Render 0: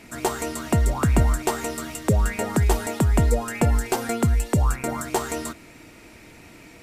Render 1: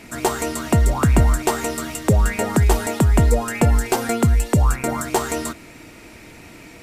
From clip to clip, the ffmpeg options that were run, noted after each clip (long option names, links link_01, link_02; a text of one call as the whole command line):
ffmpeg -i in.wav -af "acontrast=54,volume=-1.5dB" out.wav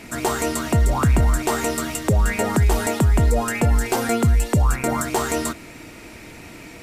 ffmpeg -i in.wav -af "alimiter=limit=-12.5dB:level=0:latency=1:release=28,volume=2dB" out.wav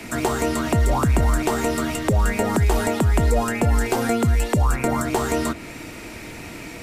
ffmpeg -i in.wav -filter_complex "[0:a]acrossover=split=84|210|870|4100[link_01][link_02][link_03][link_04][link_05];[link_01]acompressor=threshold=-22dB:ratio=4[link_06];[link_02]acompressor=threshold=-32dB:ratio=4[link_07];[link_03]acompressor=threshold=-25dB:ratio=4[link_08];[link_04]acompressor=threshold=-33dB:ratio=4[link_09];[link_05]acompressor=threshold=-38dB:ratio=4[link_10];[link_06][link_07][link_08][link_09][link_10]amix=inputs=5:normalize=0,volume=4dB" out.wav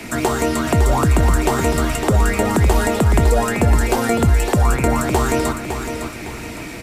ffmpeg -i in.wav -af "aecho=1:1:558|1116|1674|2232:0.398|0.139|0.0488|0.0171,volume=3.5dB" out.wav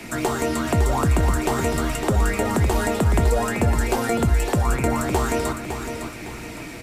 ffmpeg -i in.wav -af "flanger=delay=5.4:depth=6.3:regen=-74:speed=0.47:shape=triangular" out.wav